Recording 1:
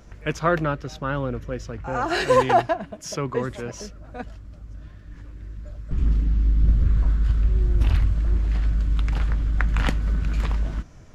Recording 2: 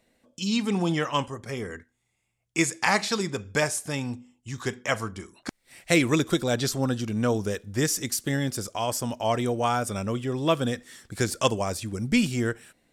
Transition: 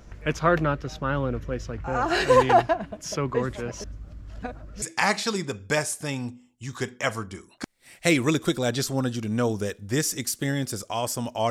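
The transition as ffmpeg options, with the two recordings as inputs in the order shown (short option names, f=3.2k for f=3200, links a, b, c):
-filter_complex "[0:a]apad=whole_dur=11.5,atrim=end=11.5,asplit=2[a][b];[a]atrim=end=3.842[c];[b]atrim=start=3.838:end=4.822,asetpts=PTS-STARTPTS,areverse[d];[1:a]atrim=start=2.668:end=9.35[e];[c][d]acrossfade=d=0.004:c1=hsin:c2=hsin[f];[f][e]acrossfade=d=0.004:c1=hsin:c2=hsin"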